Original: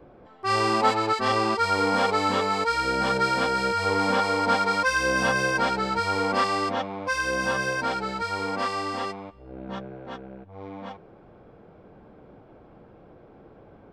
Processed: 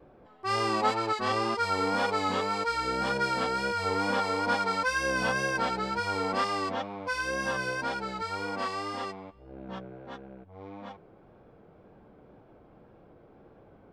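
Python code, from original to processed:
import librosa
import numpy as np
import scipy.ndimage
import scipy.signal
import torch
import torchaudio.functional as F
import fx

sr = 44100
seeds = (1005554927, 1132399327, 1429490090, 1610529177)

y = fx.wow_flutter(x, sr, seeds[0], rate_hz=2.1, depth_cents=47.0)
y = y * 10.0 ** (-5.0 / 20.0)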